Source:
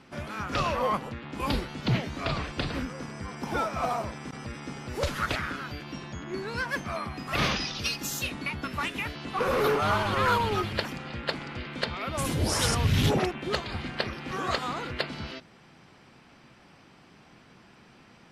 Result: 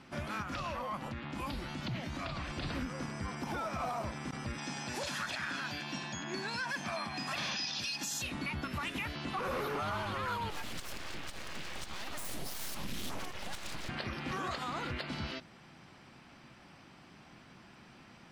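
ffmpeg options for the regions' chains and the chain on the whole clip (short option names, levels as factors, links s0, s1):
-filter_complex "[0:a]asettb=1/sr,asplit=3[s0][s1][s2];[s0]atrim=end=0.424[s3];[s1]atrim=start=0.42:end=2.5,asetpts=PTS-STARTPTS,afade=t=in:d=0.004:c=qsin,afade=t=out:st=2.076:d=0.004:c=qsin,acompressor=threshold=0.02:ratio=4:attack=3.2:release=140:knee=1:detection=peak,bandreject=f=430:w=5.1[s4];[s2]atrim=start=2.496[s5];[s3][s4]acrossfade=d=0.004:c1=hsin:c2=qsin[s6];[s6][s5]acrossfade=d=0.004:c1=qsin:c2=hsin,asettb=1/sr,asplit=3[s7][s8][s9];[s7]atrim=end=4.584[s10];[s8]atrim=start=4.58:end=8.22,asetpts=PTS-STARTPTS,afade=t=in:d=0.004:c=qsin,afade=t=out:st=3.636:d=0.004:c=qsin,highpass=180,lowpass=7800,highshelf=f=3500:g=10,aecho=1:1:1.2:0.4,atrim=end_sample=160524[s11];[s9]atrim=start=8.216[s12];[s10][s11]acrossfade=d=0.004:c1=hsin:c2=qsin[s13];[s13][s12]acrossfade=d=0.004:c1=qsin:c2=hsin,asettb=1/sr,asplit=3[s14][s15][s16];[s14]atrim=end=10.504[s17];[s15]atrim=start=10.5:end=13.89,asetpts=PTS-STARTPTS,afade=t=in:d=0.004:c=qsin,afade=t=out:st=3.386:d=0.004:c=qsin,highshelf=f=5000:g=10.5,acompressor=threshold=0.02:ratio=4:attack=3.2:release=140:knee=1:detection=peak,aeval=exprs='abs(val(0))':c=same[s18];[s16]atrim=start=13.886[s19];[s17][s18]acrossfade=d=0.004:c1=hsin:c2=qsin[s20];[s20][s19]acrossfade=d=0.004:c1=qsin:c2=hsin,alimiter=level_in=1.41:limit=0.0631:level=0:latency=1:release=92,volume=0.708,equalizer=f=450:t=o:w=0.32:g=-5.5,volume=0.891"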